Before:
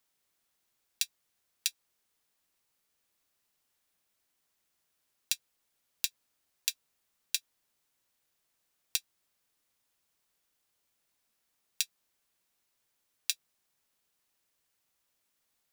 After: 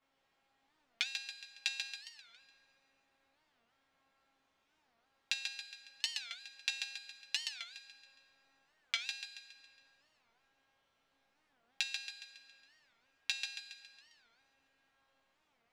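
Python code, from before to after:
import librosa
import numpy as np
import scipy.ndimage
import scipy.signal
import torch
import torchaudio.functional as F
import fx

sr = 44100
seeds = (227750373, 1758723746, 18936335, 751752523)

p1 = fx.comb_fb(x, sr, f0_hz=270.0, decay_s=0.75, harmonics='all', damping=0.0, mix_pct=90)
p2 = fx.level_steps(p1, sr, step_db=24)
p3 = p1 + (p2 * 10.0 ** (2.5 / 20.0))
p4 = scipy.signal.sosfilt(scipy.signal.butter(2, 2700.0, 'lowpass', fs=sr, output='sos'), p3)
p5 = fx.peak_eq(p4, sr, hz=750.0, db=5.0, octaves=0.66)
p6 = p5 + fx.echo_feedback(p5, sr, ms=138, feedback_pct=47, wet_db=-5, dry=0)
p7 = fx.rev_plate(p6, sr, seeds[0], rt60_s=4.8, hf_ratio=0.5, predelay_ms=0, drr_db=15.0)
p8 = fx.record_warp(p7, sr, rpm=45.0, depth_cents=250.0)
y = p8 * 10.0 ** (16.0 / 20.0)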